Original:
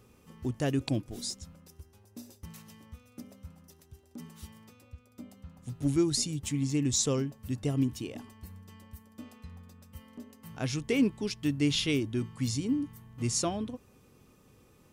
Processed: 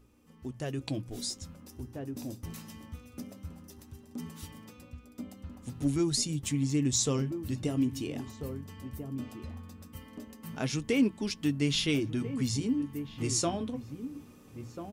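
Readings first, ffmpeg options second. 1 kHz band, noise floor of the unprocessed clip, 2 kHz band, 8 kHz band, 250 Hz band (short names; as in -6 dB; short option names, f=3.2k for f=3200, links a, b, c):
+0.5 dB, -62 dBFS, 0.0 dB, 0.0 dB, 0.0 dB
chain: -filter_complex "[0:a]aeval=exprs='val(0)+0.00316*(sin(2*PI*60*n/s)+sin(2*PI*2*60*n/s)/2+sin(2*PI*3*60*n/s)/3+sin(2*PI*4*60*n/s)/4+sin(2*PI*5*60*n/s)/5)':c=same,bandreject=f=60:t=h:w=6,bandreject=f=120:t=h:w=6,bandreject=f=180:t=h:w=6,asplit=2[a][b];[b]adelay=1341,volume=-13dB,highshelf=f=4k:g=-30.2[c];[a][c]amix=inputs=2:normalize=0,dynaudnorm=f=290:g=7:m=11dB,flanger=delay=3:depth=9.8:regen=-59:speed=0.18:shape=triangular,asplit=2[d][e];[e]acompressor=threshold=-32dB:ratio=6,volume=0dB[f];[d][f]amix=inputs=2:normalize=0,volume=-8.5dB"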